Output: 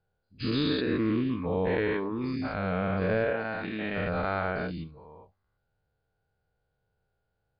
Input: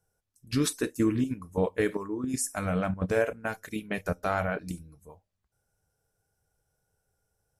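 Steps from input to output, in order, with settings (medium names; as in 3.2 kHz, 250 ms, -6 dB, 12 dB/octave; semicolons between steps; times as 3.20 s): every event in the spectrogram widened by 240 ms; trim -5.5 dB; MP3 64 kbps 11.025 kHz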